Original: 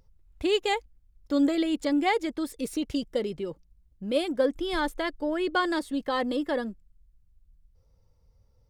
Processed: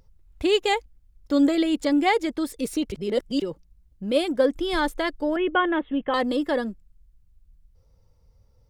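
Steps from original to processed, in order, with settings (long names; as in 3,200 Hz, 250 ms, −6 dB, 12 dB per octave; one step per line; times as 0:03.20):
0:02.92–0:03.42: reverse
0:05.36–0:06.14: Butterworth low-pass 3,300 Hz 96 dB per octave
level +4 dB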